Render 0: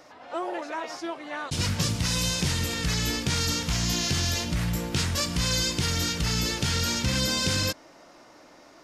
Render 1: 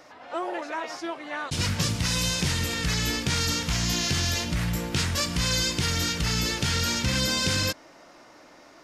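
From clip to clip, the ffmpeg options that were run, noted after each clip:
-af "equalizer=f=1900:t=o:w=1.5:g=2.5"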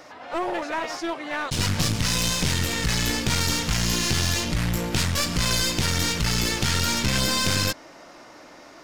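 -af "aeval=exprs='clip(val(0),-1,0.0224)':c=same,volume=1.78"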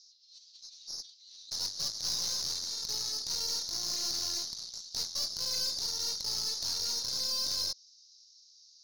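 -af "asuperpass=centerf=5100:order=8:qfactor=2.1,aeval=exprs='(tanh(22.4*val(0)+0.35)-tanh(0.35))/22.4':c=same"

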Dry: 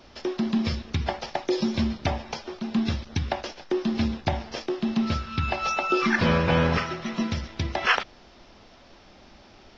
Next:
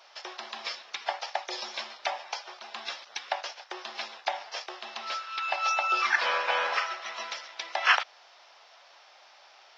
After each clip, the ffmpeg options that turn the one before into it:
-af "highpass=f=680:w=0.5412,highpass=f=680:w=1.3066"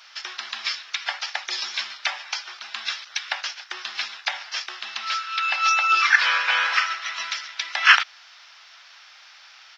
-af "firequalizer=gain_entry='entry(240,0);entry(540,-7);entry(1400,12)':delay=0.05:min_phase=1,volume=0.708"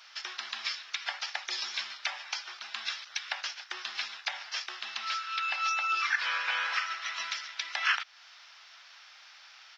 -af "acompressor=threshold=0.0501:ratio=2,volume=0.562"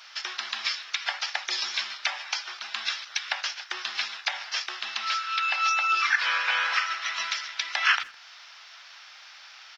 -filter_complex "[0:a]asplit=2[s0][s1];[s1]adelay=160,highpass=300,lowpass=3400,asoftclip=type=hard:threshold=0.0631,volume=0.0708[s2];[s0][s2]amix=inputs=2:normalize=0,volume=1.88"

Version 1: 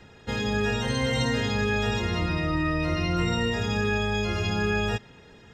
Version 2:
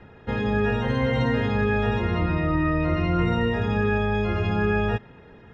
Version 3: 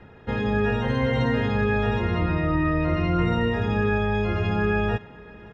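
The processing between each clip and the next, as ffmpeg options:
-af "lowpass=1900,volume=1.5"
-af "aecho=1:1:550|1100|1650|2200:0.0708|0.0382|0.0206|0.0111"

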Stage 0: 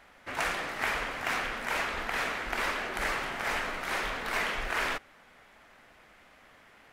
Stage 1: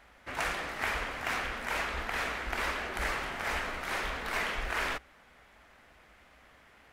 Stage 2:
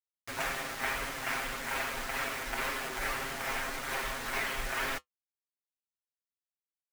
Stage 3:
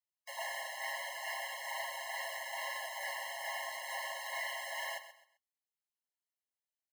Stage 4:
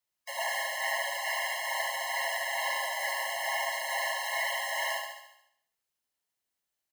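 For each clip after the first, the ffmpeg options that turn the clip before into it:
-af "equalizer=f=60:w=1.8:g=11.5,volume=0.794"
-af "aecho=1:1:7.5:0.95,acrusher=bits=5:mix=0:aa=0.000001,flanger=delay=6.9:depth=1.9:regen=-61:speed=1.8:shape=sinusoidal"
-filter_complex "[0:a]acrossover=split=280[s0][s1];[s1]asoftclip=type=hard:threshold=0.0266[s2];[s0][s2]amix=inputs=2:normalize=0,aecho=1:1:130|260|390:0.237|0.0664|0.0186,afftfilt=real='re*eq(mod(floor(b*sr/1024/550),2),1)':imag='im*eq(mod(floor(b*sr/1024/550),2),1)':win_size=1024:overlap=0.75,volume=0.841"
-af "aecho=1:1:73|146|219|292|365|438|511:0.562|0.298|0.158|0.0837|0.0444|0.0235|0.0125,volume=2.24"

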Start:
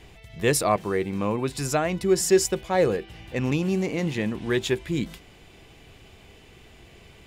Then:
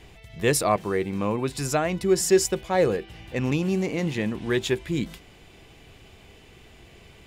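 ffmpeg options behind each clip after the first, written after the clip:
-af anull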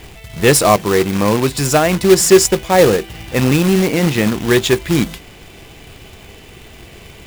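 -af "acrusher=bits=2:mode=log:mix=0:aa=0.000001,acontrast=89,volume=1.58"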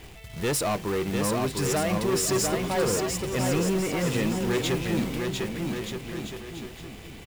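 -filter_complex "[0:a]asoftclip=type=tanh:threshold=0.188,asplit=2[s0][s1];[s1]aecho=0:1:700|1225|1619|1914|2136:0.631|0.398|0.251|0.158|0.1[s2];[s0][s2]amix=inputs=2:normalize=0,volume=0.376"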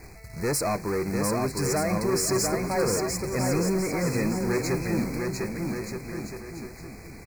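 -af "asuperstop=centerf=3200:order=20:qfactor=2.1"

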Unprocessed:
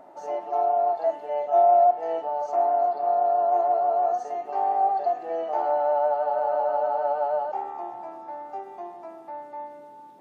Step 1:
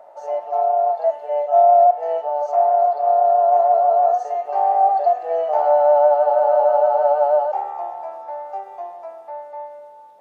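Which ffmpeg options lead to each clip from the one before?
-af "lowshelf=f=410:t=q:w=3:g=-9.5,dynaudnorm=f=950:g=5:m=1.58"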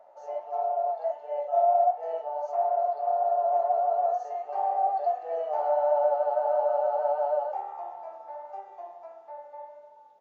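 -af "flanger=delay=8.6:depth=7.8:regen=-52:speed=1.5:shape=triangular,aresample=16000,aresample=44100,volume=0.501"

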